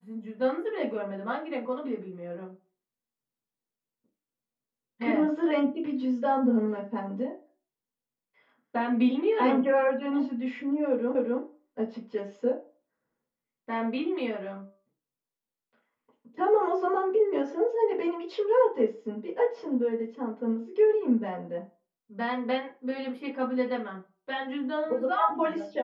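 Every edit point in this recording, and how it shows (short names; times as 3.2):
11.15 repeat of the last 0.26 s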